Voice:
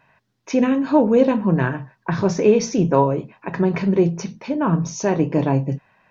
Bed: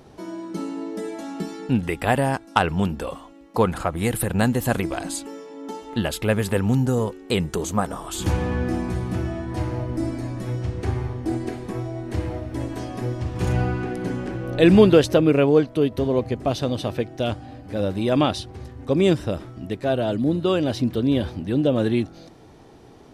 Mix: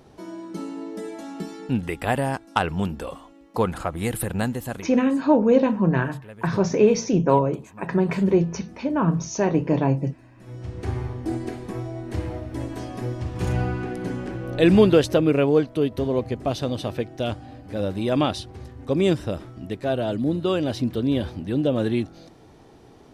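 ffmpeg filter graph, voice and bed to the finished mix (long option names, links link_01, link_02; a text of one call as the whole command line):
ffmpeg -i stem1.wav -i stem2.wav -filter_complex "[0:a]adelay=4350,volume=-2dB[link_01];[1:a]volume=17dB,afade=type=out:start_time=4.26:duration=0.76:silence=0.112202,afade=type=in:start_time=10.36:duration=0.6:silence=0.1[link_02];[link_01][link_02]amix=inputs=2:normalize=0" out.wav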